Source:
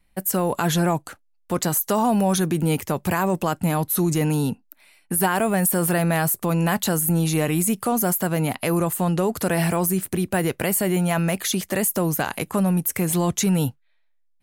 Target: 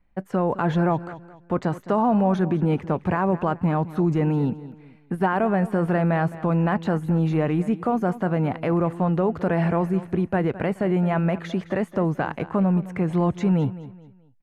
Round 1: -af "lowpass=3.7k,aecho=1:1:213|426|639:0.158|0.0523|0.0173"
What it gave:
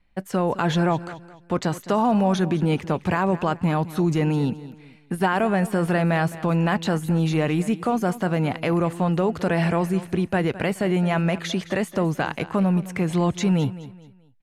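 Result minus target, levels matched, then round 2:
4000 Hz band +10.5 dB
-af "lowpass=1.6k,aecho=1:1:213|426|639:0.158|0.0523|0.0173"

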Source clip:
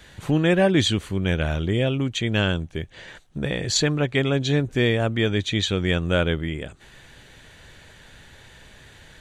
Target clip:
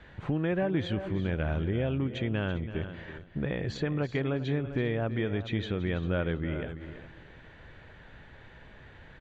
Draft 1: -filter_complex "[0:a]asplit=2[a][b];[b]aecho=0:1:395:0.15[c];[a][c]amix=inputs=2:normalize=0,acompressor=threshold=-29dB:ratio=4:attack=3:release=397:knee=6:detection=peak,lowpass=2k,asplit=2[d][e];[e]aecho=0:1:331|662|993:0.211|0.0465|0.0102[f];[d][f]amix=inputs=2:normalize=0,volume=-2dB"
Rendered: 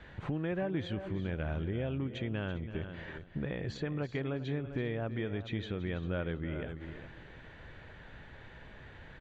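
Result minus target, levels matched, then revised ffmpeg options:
compressor: peak gain reduction +5.5 dB
-filter_complex "[0:a]asplit=2[a][b];[b]aecho=0:1:395:0.15[c];[a][c]amix=inputs=2:normalize=0,acompressor=threshold=-21.5dB:ratio=4:attack=3:release=397:knee=6:detection=peak,lowpass=2k,asplit=2[d][e];[e]aecho=0:1:331|662|993:0.211|0.0465|0.0102[f];[d][f]amix=inputs=2:normalize=0,volume=-2dB"

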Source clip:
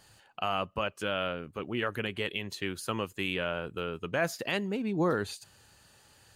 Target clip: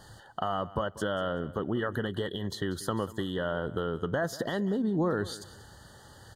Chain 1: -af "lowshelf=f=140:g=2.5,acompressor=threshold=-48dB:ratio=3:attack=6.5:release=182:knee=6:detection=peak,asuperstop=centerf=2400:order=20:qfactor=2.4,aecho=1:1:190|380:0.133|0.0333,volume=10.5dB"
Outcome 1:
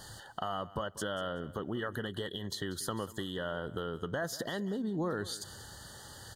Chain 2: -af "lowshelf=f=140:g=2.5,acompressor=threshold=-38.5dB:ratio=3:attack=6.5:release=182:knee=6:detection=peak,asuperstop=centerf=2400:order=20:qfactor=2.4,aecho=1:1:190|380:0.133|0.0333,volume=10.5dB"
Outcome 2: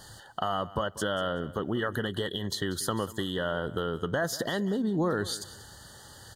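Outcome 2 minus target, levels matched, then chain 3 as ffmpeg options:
4000 Hz band +4.5 dB
-af "lowshelf=f=140:g=2.5,acompressor=threshold=-38.5dB:ratio=3:attack=6.5:release=182:knee=6:detection=peak,asuperstop=centerf=2400:order=20:qfactor=2.4,highshelf=f=2.5k:g=-8.5,aecho=1:1:190|380:0.133|0.0333,volume=10.5dB"

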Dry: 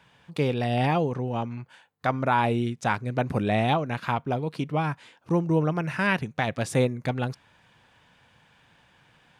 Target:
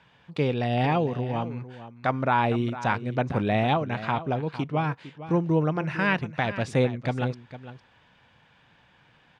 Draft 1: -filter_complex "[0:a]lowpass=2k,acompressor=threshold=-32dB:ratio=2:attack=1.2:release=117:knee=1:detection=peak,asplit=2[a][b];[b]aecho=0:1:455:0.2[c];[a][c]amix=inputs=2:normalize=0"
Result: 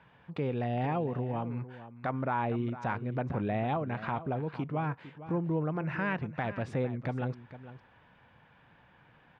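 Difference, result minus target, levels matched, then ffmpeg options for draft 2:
compressor: peak gain reduction +9.5 dB; 4000 Hz band -7.5 dB
-filter_complex "[0:a]lowpass=4.9k,asplit=2[a][b];[b]aecho=0:1:455:0.2[c];[a][c]amix=inputs=2:normalize=0"

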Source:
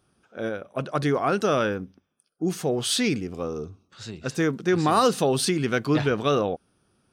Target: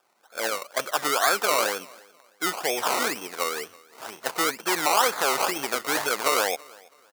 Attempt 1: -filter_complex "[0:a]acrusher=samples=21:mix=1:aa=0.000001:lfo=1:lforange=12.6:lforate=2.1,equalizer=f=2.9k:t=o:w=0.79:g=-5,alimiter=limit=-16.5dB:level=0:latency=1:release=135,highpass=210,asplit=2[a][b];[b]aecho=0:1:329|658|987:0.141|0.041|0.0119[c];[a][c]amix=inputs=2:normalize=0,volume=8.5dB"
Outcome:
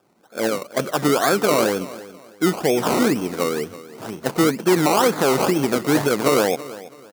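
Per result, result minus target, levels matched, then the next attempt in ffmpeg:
250 Hz band +11.5 dB; echo-to-direct +7.5 dB
-filter_complex "[0:a]acrusher=samples=21:mix=1:aa=0.000001:lfo=1:lforange=12.6:lforate=2.1,equalizer=f=2.9k:t=o:w=0.79:g=-5,alimiter=limit=-16.5dB:level=0:latency=1:release=135,highpass=810,asplit=2[a][b];[b]aecho=0:1:329|658|987:0.141|0.041|0.0119[c];[a][c]amix=inputs=2:normalize=0,volume=8.5dB"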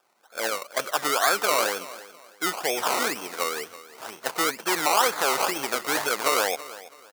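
echo-to-direct +7.5 dB
-filter_complex "[0:a]acrusher=samples=21:mix=1:aa=0.000001:lfo=1:lforange=12.6:lforate=2.1,equalizer=f=2.9k:t=o:w=0.79:g=-5,alimiter=limit=-16.5dB:level=0:latency=1:release=135,highpass=810,asplit=2[a][b];[b]aecho=0:1:329|658:0.0596|0.0173[c];[a][c]amix=inputs=2:normalize=0,volume=8.5dB"

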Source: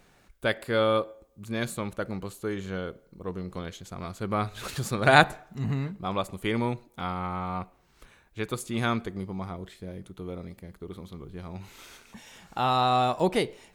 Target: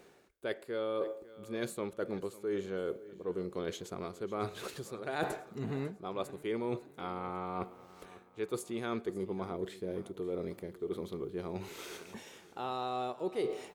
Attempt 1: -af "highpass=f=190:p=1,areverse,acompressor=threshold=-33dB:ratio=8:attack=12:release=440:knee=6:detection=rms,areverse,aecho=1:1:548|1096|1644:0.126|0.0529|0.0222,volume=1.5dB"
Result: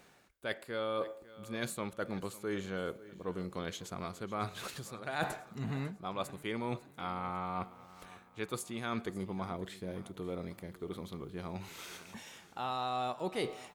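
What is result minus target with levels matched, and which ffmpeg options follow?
500 Hz band -3.0 dB
-af "highpass=f=190:p=1,equalizer=f=400:w=1.6:g=11.5,areverse,acompressor=threshold=-33dB:ratio=8:attack=12:release=440:knee=6:detection=rms,areverse,aecho=1:1:548|1096|1644:0.126|0.0529|0.0222,volume=1.5dB"

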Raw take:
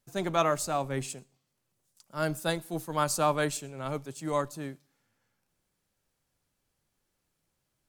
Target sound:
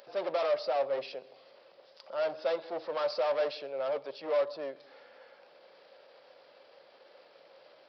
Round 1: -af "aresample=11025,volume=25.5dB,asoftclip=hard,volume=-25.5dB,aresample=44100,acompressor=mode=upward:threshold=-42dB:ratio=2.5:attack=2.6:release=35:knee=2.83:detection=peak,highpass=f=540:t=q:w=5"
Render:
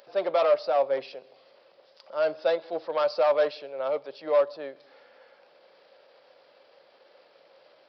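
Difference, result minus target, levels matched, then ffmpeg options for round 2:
overloaded stage: distortion -6 dB
-af "aresample=11025,volume=35dB,asoftclip=hard,volume=-35dB,aresample=44100,acompressor=mode=upward:threshold=-42dB:ratio=2.5:attack=2.6:release=35:knee=2.83:detection=peak,highpass=f=540:t=q:w=5"

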